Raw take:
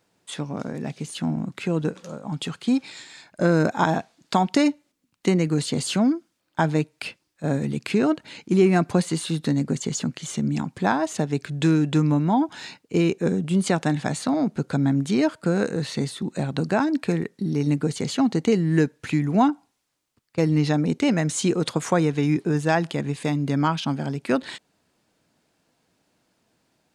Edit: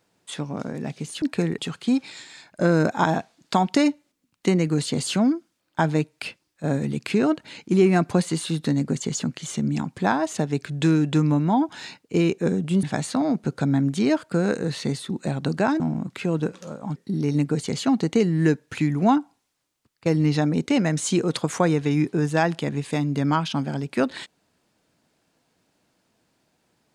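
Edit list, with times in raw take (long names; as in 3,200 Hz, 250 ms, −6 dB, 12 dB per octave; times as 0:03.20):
0:01.22–0:02.38: swap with 0:16.92–0:17.28
0:13.63–0:13.95: remove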